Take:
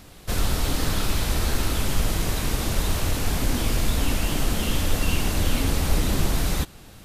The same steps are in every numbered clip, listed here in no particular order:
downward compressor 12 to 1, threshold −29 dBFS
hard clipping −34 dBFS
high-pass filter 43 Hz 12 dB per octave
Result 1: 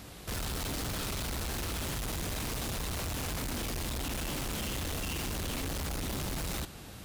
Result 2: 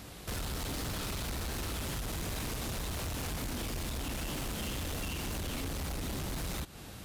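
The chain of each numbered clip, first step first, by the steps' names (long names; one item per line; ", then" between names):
high-pass filter, then hard clipping, then downward compressor
high-pass filter, then downward compressor, then hard clipping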